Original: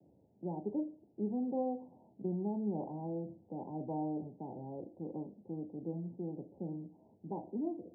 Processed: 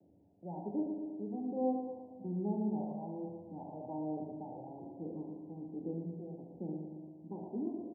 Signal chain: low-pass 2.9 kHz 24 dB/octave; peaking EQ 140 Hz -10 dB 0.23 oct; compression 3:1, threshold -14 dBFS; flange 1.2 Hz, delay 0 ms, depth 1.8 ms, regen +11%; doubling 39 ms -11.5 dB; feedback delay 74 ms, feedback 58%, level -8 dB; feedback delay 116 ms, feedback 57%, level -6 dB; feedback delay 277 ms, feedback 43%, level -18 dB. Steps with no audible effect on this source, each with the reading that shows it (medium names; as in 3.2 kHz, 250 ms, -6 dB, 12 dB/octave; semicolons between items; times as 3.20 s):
low-pass 2.9 kHz: input has nothing above 960 Hz; compression, threshold -14 dBFS: peak at its input -26.0 dBFS